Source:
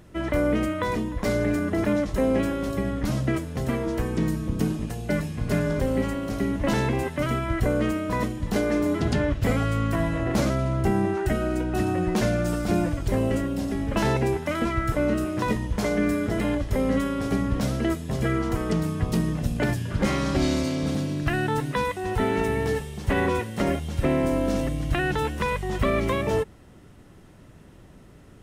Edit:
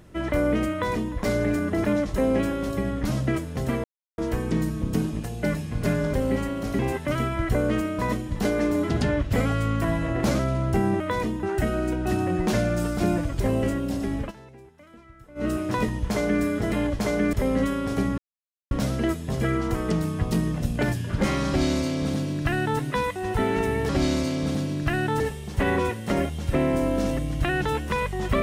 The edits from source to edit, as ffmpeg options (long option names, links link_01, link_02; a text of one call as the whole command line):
ffmpeg -i in.wav -filter_complex "[0:a]asplit=12[link_01][link_02][link_03][link_04][link_05][link_06][link_07][link_08][link_09][link_10][link_11][link_12];[link_01]atrim=end=3.84,asetpts=PTS-STARTPTS,afade=type=out:start_time=3.836:duration=0.004:curve=hsin,apad=pad_dur=0.34[link_13];[link_02]atrim=start=3.84:end=6.452,asetpts=PTS-STARTPTS,afade=type=in:duration=0.004:curve=hsin[link_14];[link_03]atrim=start=6.898:end=11.112[link_15];[link_04]atrim=start=0.718:end=1.152[link_16];[link_05]atrim=start=11.108:end=14,asetpts=PTS-STARTPTS,afade=type=out:start_time=2.762:duration=0.13:silence=0.0630957[link_17];[link_06]atrim=start=14:end=15.03,asetpts=PTS-STARTPTS,volume=-24dB[link_18];[link_07]atrim=start=15.03:end=16.672,asetpts=PTS-STARTPTS,afade=type=in:duration=0.13:silence=0.0630957[link_19];[link_08]atrim=start=15.768:end=16.112[link_20];[link_09]atrim=start=16.668:end=17.52,asetpts=PTS-STARTPTS,afade=type=out:start_time=0.848:duration=0.004:curve=hsin,apad=pad_dur=0.53[link_21];[link_10]atrim=start=17.52:end=22.702,asetpts=PTS-STARTPTS,afade=type=in:duration=0.004:curve=hsin[link_22];[link_11]atrim=start=20.288:end=21.602[link_23];[link_12]atrim=start=22.698[link_24];[link_13][link_14]concat=n=2:v=0:a=1[link_25];[link_25][link_15]acrossfade=duration=0.004:curve1=hsin:curve2=hsin[link_26];[link_26][link_16]acrossfade=duration=0.004:curve1=hsin:curve2=hsin[link_27];[link_17][link_18][link_19]concat=n=3:v=0:a=1[link_28];[link_27][link_28]acrossfade=duration=0.004:curve1=hsin:curve2=hsin[link_29];[link_29][link_20]acrossfade=duration=0.004:curve1=hsin:curve2=hsin[link_30];[link_21][link_22]concat=n=2:v=0:a=1[link_31];[link_30][link_31]acrossfade=duration=0.004:curve1=hsin:curve2=hsin[link_32];[link_32][link_23]acrossfade=duration=0.004:curve1=hsin:curve2=hsin[link_33];[link_33][link_24]acrossfade=duration=0.004:curve1=hsin:curve2=hsin" out.wav